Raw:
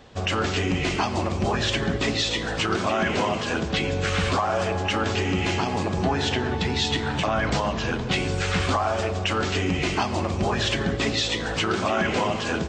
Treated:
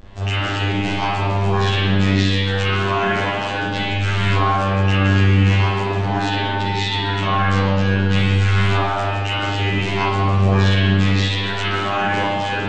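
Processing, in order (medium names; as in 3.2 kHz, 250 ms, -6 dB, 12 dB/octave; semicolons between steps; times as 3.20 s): robot voice 98.6 Hz; vibrato 0.35 Hz 26 cents; spring tank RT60 1.3 s, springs 31/43 ms, chirp 25 ms, DRR -9.5 dB; trim -2 dB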